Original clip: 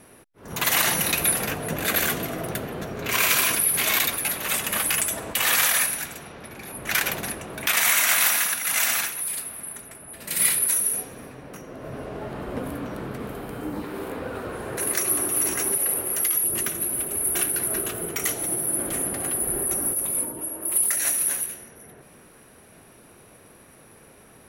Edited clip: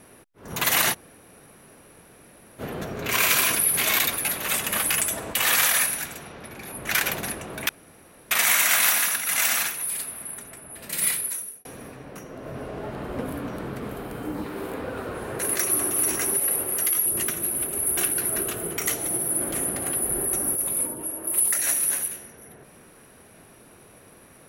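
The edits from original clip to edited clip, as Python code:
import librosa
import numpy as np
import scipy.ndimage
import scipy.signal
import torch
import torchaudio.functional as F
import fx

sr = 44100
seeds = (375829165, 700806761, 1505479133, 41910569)

y = fx.edit(x, sr, fx.room_tone_fill(start_s=0.93, length_s=1.67, crossfade_s=0.04),
    fx.insert_room_tone(at_s=7.69, length_s=0.62),
    fx.fade_out_span(start_s=10.21, length_s=0.82), tone=tone)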